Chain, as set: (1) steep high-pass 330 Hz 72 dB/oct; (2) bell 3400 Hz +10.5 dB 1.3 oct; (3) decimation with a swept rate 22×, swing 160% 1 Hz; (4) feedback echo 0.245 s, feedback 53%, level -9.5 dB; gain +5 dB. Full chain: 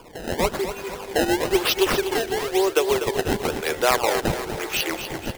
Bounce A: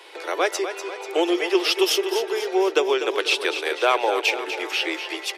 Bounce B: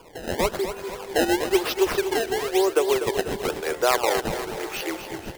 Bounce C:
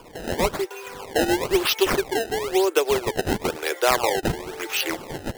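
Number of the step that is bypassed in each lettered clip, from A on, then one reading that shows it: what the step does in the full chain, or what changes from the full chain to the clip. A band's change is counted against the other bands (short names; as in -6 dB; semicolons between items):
3, 4 kHz band +3.0 dB; 2, 125 Hz band -3.5 dB; 4, echo-to-direct -8.0 dB to none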